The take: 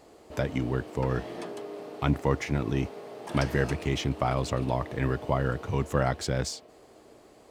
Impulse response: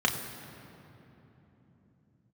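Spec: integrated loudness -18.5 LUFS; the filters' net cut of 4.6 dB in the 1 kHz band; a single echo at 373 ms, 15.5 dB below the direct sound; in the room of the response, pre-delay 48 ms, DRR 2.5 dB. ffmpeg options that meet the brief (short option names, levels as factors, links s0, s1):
-filter_complex "[0:a]equalizer=f=1000:t=o:g=-6.5,aecho=1:1:373:0.168,asplit=2[s0][s1];[1:a]atrim=start_sample=2205,adelay=48[s2];[s1][s2]afir=irnorm=-1:irlink=0,volume=0.2[s3];[s0][s3]amix=inputs=2:normalize=0,volume=2.82"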